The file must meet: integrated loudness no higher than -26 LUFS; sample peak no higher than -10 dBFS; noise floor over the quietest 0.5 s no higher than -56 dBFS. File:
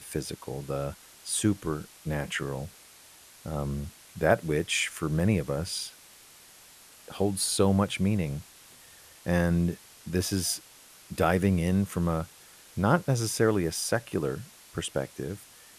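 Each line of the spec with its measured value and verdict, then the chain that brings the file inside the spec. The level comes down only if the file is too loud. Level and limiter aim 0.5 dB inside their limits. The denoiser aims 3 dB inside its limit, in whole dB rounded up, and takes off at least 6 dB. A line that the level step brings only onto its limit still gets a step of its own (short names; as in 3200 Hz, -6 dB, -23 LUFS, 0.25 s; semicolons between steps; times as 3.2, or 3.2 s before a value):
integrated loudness -29.0 LUFS: OK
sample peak -8.5 dBFS: fail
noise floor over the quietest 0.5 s -53 dBFS: fail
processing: denoiser 6 dB, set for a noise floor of -53 dBFS; limiter -10.5 dBFS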